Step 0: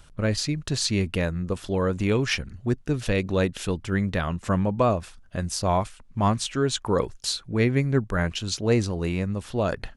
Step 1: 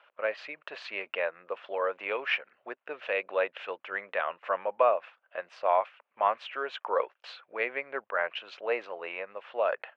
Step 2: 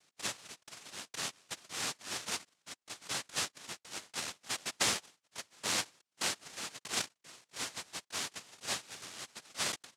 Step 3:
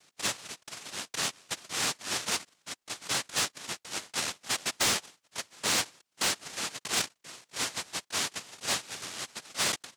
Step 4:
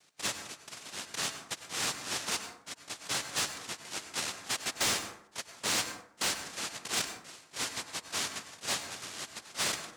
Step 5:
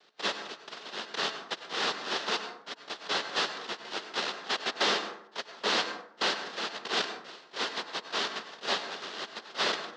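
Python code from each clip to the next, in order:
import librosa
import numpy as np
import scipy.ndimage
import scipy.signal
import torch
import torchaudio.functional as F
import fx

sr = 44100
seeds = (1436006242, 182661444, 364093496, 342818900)

y1 = scipy.signal.sosfilt(scipy.signal.cheby1(3, 1.0, [540.0, 2700.0], 'bandpass', fs=sr, output='sos'), x)
y2 = fx.noise_vocoder(y1, sr, seeds[0], bands=1)
y2 = y2 * 10.0 ** (-8.5 / 20.0)
y3 = np.clip(y2, -10.0 ** (-30.0 / 20.0), 10.0 ** (-30.0 / 20.0))
y3 = y3 * 10.0 ** (7.5 / 20.0)
y4 = fx.rev_plate(y3, sr, seeds[1], rt60_s=0.69, hf_ratio=0.45, predelay_ms=85, drr_db=8.5)
y4 = y4 * 10.0 ** (-3.0 / 20.0)
y5 = fx.cabinet(y4, sr, low_hz=210.0, low_slope=24, high_hz=4300.0, hz=(280.0, 420.0, 2300.0), db=(-6, 5, -7))
y5 = y5 * 10.0 ** (6.5 / 20.0)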